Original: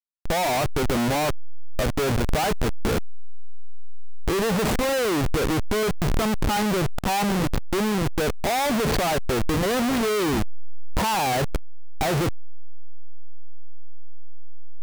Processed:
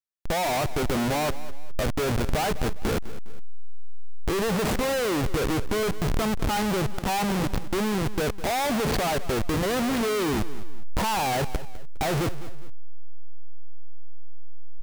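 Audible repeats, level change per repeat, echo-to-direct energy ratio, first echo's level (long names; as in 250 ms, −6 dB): 2, −8.0 dB, −15.0 dB, −15.5 dB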